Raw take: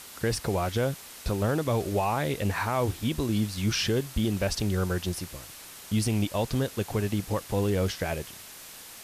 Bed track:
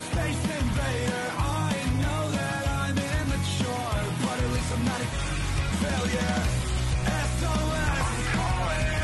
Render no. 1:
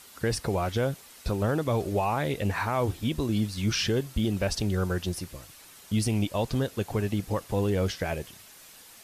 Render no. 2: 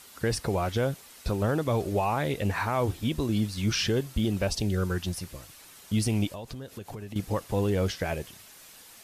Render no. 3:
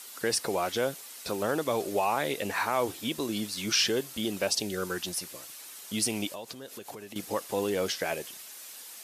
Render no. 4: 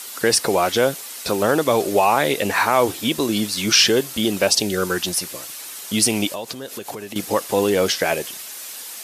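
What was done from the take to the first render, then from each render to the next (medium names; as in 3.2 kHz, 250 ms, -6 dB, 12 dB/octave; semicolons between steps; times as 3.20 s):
noise reduction 7 dB, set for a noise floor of -46 dBFS
4.45–5.23 s: peaking EQ 2 kHz -> 300 Hz -13 dB 0.37 oct; 6.31–7.16 s: compression, threshold -36 dBFS
high-pass 290 Hz 12 dB/octave; treble shelf 3.6 kHz +7 dB
trim +11 dB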